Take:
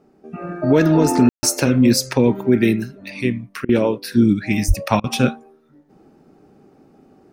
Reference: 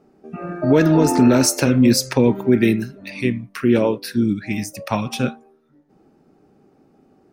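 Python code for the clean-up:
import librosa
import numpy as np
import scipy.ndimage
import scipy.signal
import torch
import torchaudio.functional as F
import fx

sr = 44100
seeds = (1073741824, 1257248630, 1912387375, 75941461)

y = fx.fix_deplosive(x, sr, at_s=(4.67,))
y = fx.fix_ambience(y, sr, seeds[0], print_start_s=5.54, print_end_s=6.04, start_s=1.29, end_s=1.43)
y = fx.fix_interpolate(y, sr, at_s=(3.65, 5.0), length_ms=39.0)
y = fx.gain(y, sr, db=fx.steps((0.0, 0.0), (4.12, -4.5)))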